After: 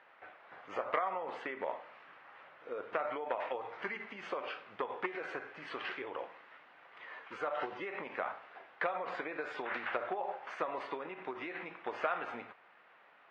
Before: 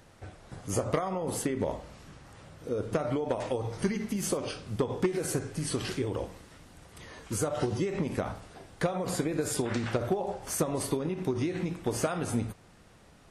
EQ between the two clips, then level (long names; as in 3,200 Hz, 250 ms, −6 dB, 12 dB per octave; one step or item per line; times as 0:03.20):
high-pass filter 910 Hz 12 dB per octave
low-pass filter 2,500 Hz 24 dB per octave
+3.0 dB